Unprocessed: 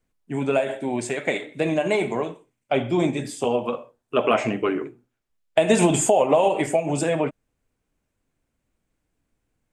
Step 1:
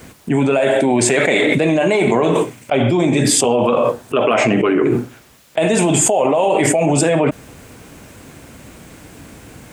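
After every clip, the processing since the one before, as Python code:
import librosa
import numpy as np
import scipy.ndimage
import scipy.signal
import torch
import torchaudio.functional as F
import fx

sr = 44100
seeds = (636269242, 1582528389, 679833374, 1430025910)

y = scipy.signal.sosfilt(scipy.signal.butter(2, 78.0, 'highpass', fs=sr, output='sos'), x)
y = fx.env_flatten(y, sr, amount_pct=100)
y = F.gain(torch.from_numpy(y), -1.0).numpy()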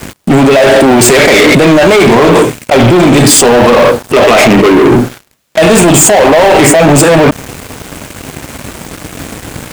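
y = fx.leveller(x, sr, passes=5)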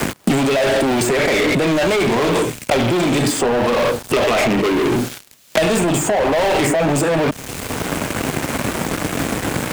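y = fx.band_squash(x, sr, depth_pct=100)
y = F.gain(torch.from_numpy(y), -12.0).numpy()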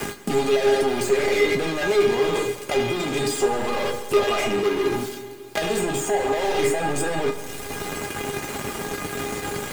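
y = fx.comb_fb(x, sr, f0_hz=410.0, decay_s=0.19, harmonics='all', damping=0.0, mix_pct=90)
y = fx.rev_schroeder(y, sr, rt60_s=2.4, comb_ms=33, drr_db=10.0)
y = F.gain(torch.from_numpy(y), 5.5).numpy()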